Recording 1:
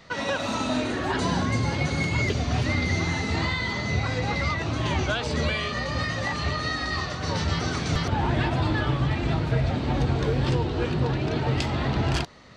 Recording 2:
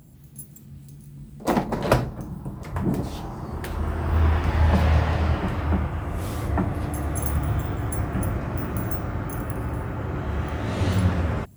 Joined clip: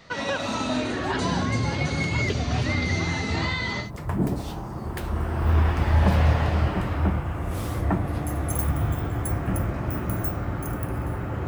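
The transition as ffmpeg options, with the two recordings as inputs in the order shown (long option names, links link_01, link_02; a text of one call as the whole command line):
ffmpeg -i cue0.wav -i cue1.wav -filter_complex "[0:a]apad=whole_dur=11.47,atrim=end=11.47,atrim=end=3.91,asetpts=PTS-STARTPTS[link_01];[1:a]atrim=start=2.46:end=10.14,asetpts=PTS-STARTPTS[link_02];[link_01][link_02]acrossfade=duration=0.12:curve1=tri:curve2=tri" out.wav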